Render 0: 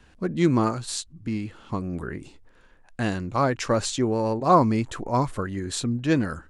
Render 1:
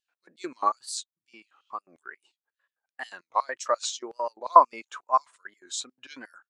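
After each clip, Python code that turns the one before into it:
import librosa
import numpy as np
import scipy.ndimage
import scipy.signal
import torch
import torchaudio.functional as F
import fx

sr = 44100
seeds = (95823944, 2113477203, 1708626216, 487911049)

y = fx.filter_lfo_highpass(x, sr, shape='square', hz=5.6, low_hz=830.0, high_hz=4100.0, q=0.87)
y = fx.wow_flutter(y, sr, seeds[0], rate_hz=2.1, depth_cents=140.0)
y = fx.spectral_expand(y, sr, expansion=1.5)
y = y * librosa.db_to_amplitude(6.0)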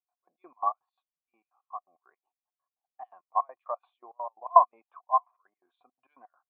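y = fx.formant_cascade(x, sr, vowel='a')
y = y * librosa.db_to_amplitude(5.5)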